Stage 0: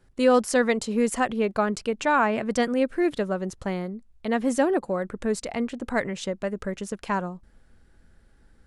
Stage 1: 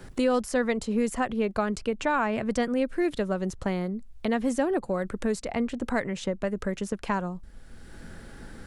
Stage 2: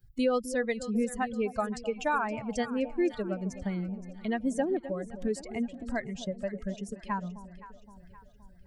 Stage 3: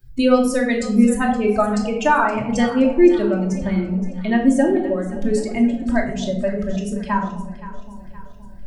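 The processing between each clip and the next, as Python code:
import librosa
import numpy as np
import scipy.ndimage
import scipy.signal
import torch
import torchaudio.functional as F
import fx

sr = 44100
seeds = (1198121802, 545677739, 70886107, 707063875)

y1 = fx.low_shelf(x, sr, hz=85.0, db=12.0)
y1 = fx.band_squash(y1, sr, depth_pct=70)
y1 = y1 * librosa.db_to_amplitude(-3.5)
y2 = fx.bin_expand(y1, sr, power=2.0)
y2 = fx.echo_alternate(y2, sr, ms=260, hz=810.0, feedback_pct=69, wet_db=-12)
y3 = fx.room_shoebox(y2, sr, seeds[0], volume_m3=970.0, walls='furnished', distance_m=2.7)
y3 = y3 * librosa.db_to_amplitude(8.5)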